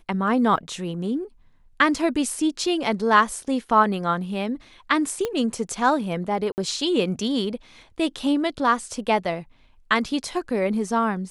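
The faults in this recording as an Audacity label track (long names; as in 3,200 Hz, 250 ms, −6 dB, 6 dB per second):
0.570000	0.570000	drop-out 2.5 ms
5.250000	5.250000	click −12 dBFS
6.520000	6.580000	drop-out 59 ms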